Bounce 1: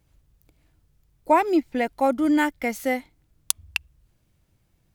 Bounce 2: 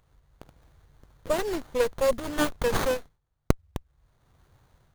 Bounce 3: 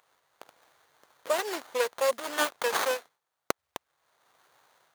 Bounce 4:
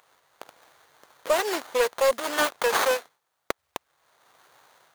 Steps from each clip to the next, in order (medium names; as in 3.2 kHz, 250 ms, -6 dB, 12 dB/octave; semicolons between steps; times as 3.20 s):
FFT filter 150 Hz 0 dB, 310 Hz -22 dB, 480 Hz 0 dB, 910 Hz -23 dB, 6.4 kHz +13 dB; level rider gain up to 7 dB; sliding maximum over 17 samples; trim -1 dB
high-pass 650 Hz 12 dB/octave; in parallel at -2 dB: compression, threshold -35 dBFS, peak gain reduction 12.5 dB
saturation -19 dBFS, distortion -14 dB; trim +6.5 dB